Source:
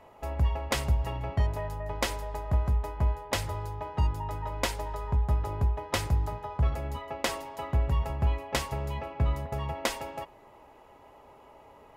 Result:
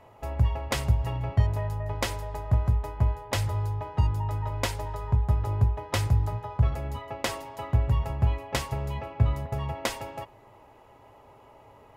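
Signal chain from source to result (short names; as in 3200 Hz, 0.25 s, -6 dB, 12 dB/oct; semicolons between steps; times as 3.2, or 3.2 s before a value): bell 110 Hz +11.5 dB 0.43 oct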